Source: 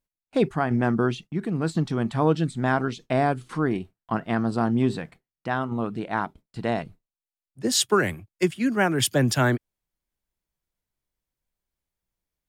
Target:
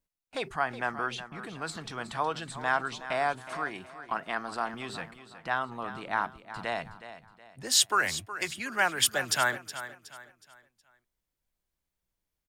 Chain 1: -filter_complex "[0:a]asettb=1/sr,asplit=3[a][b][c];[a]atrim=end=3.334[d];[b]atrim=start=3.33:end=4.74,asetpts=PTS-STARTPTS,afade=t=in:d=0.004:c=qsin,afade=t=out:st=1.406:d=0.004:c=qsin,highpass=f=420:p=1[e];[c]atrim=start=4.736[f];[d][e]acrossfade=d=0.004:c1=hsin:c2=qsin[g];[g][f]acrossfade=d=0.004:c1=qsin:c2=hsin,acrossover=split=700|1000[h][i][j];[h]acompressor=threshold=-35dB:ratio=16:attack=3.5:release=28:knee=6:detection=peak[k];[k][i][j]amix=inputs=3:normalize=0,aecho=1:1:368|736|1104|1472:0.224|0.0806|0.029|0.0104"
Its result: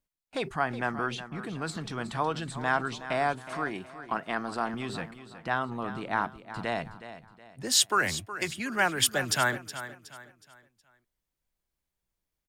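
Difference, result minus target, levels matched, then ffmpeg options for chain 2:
compressor: peak gain reduction -7.5 dB
-filter_complex "[0:a]asettb=1/sr,asplit=3[a][b][c];[a]atrim=end=3.334[d];[b]atrim=start=3.33:end=4.74,asetpts=PTS-STARTPTS,afade=t=in:d=0.004:c=qsin,afade=t=out:st=1.406:d=0.004:c=qsin,highpass=f=420:p=1[e];[c]atrim=start=4.736[f];[d][e]acrossfade=d=0.004:c1=hsin:c2=qsin[g];[g][f]acrossfade=d=0.004:c1=qsin:c2=hsin,acrossover=split=700|1000[h][i][j];[h]acompressor=threshold=-43dB:ratio=16:attack=3.5:release=28:knee=6:detection=peak[k];[k][i][j]amix=inputs=3:normalize=0,aecho=1:1:368|736|1104|1472:0.224|0.0806|0.029|0.0104"

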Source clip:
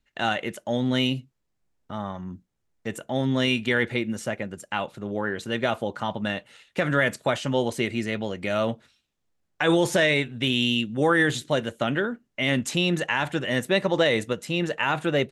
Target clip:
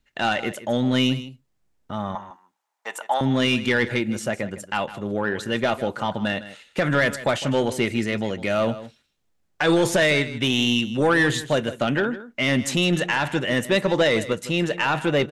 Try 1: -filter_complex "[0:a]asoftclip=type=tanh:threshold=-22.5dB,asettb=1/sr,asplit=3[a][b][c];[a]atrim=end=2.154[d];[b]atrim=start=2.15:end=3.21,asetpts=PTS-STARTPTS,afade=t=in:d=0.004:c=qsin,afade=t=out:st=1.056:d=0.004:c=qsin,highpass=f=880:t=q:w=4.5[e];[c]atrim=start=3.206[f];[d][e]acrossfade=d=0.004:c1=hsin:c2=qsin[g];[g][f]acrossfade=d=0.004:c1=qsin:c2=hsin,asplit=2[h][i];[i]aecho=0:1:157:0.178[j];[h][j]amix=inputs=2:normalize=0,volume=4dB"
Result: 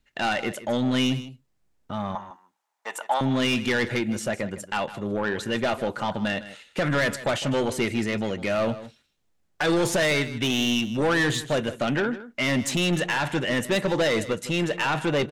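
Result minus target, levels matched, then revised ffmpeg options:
soft clip: distortion +7 dB
-filter_complex "[0:a]asoftclip=type=tanh:threshold=-15.5dB,asettb=1/sr,asplit=3[a][b][c];[a]atrim=end=2.154[d];[b]atrim=start=2.15:end=3.21,asetpts=PTS-STARTPTS,afade=t=in:d=0.004:c=qsin,afade=t=out:st=1.056:d=0.004:c=qsin,highpass=f=880:t=q:w=4.5[e];[c]atrim=start=3.206[f];[d][e]acrossfade=d=0.004:c1=hsin:c2=qsin[g];[g][f]acrossfade=d=0.004:c1=qsin:c2=hsin,asplit=2[h][i];[i]aecho=0:1:157:0.178[j];[h][j]amix=inputs=2:normalize=0,volume=4dB"

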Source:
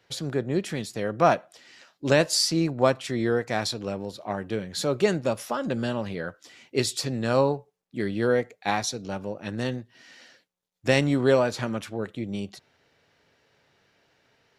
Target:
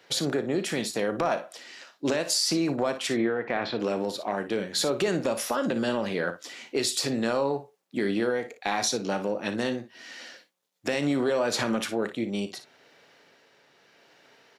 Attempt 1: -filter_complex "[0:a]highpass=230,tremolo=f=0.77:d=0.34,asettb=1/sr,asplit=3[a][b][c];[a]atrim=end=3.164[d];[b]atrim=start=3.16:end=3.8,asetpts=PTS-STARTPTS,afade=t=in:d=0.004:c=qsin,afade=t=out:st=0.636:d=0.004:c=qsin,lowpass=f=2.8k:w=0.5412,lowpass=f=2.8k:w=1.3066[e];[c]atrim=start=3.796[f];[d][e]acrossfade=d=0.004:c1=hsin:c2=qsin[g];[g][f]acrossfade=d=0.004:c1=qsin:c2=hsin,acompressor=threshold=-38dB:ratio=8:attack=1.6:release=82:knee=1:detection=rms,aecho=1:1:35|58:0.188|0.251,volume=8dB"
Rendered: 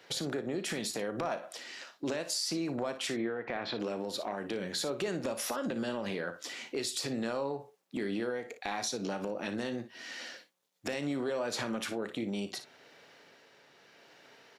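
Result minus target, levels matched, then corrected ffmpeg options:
compressor: peak gain reduction +8.5 dB
-filter_complex "[0:a]highpass=230,tremolo=f=0.77:d=0.34,asettb=1/sr,asplit=3[a][b][c];[a]atrim=end=3.164[d];[b]atrim=start=3.16:end=3.8,asetpts=PTS-STARTPTS,afade=t=in:d=0.004:c=qsin,afade=t=out:st=0.636:d=0.004:c=qsin,lowpass=f=2.8k:w=0.5412,lowpass=f=2.8k:w=1.3066[e];[c]atrim=start=3.796[f];[d][e]acrossfade=d=0.004:c1=hsin:c2=qsin[g];[g][f]acrossfade=d=0.004:c1=qsin:c2=hsin,acompressor=threshold=-28.5dB:ratio=8:attack=1.6:release=82:knee=1:detection=rms,aecho=1:1:35|58:0.188|0.251,volume=8dB"

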